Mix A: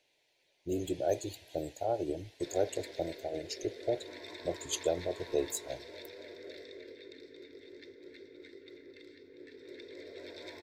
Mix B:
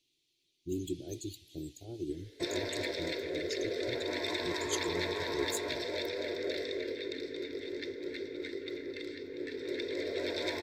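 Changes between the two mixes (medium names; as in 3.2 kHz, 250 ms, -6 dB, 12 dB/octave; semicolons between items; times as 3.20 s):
speech: add FFT filter 350 Hz 0 dB, 560 Hz -25 dB, 1.6 kHz -23 dB, 3.2 kHz -1 dB; background +12.0 dB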